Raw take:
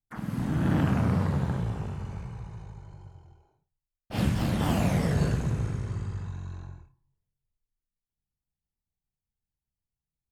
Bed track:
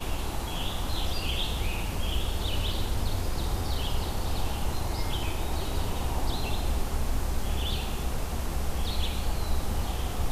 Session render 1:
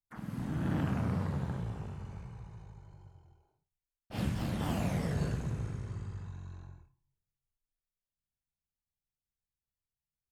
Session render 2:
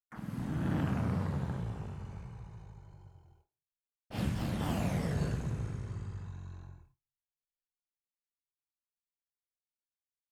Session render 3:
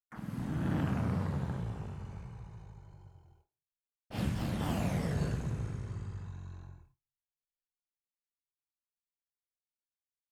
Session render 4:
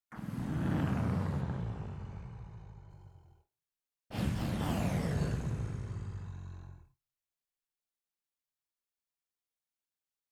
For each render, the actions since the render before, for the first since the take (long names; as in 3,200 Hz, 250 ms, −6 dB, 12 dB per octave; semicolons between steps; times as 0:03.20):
level −7.5 dB
noise gate with hold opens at −52 dBFS
no processing that can be heard
0:01.41–0:02.90: high-frequency loss of the air 60 metres